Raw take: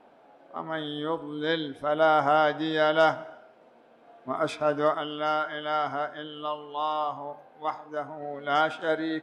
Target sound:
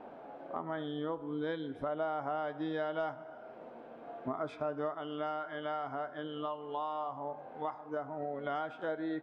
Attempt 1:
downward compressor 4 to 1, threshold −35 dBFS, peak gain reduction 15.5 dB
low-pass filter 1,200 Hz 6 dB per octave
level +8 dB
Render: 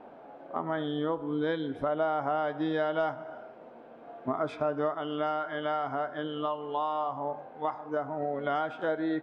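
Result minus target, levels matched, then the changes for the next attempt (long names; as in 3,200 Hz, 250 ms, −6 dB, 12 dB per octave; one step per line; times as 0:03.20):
downward compressor: peak gain reduction −6.5 dB
change: downward compressor 4 to 1, threshold −43.5 dBFS, peak gain reduction 22 dB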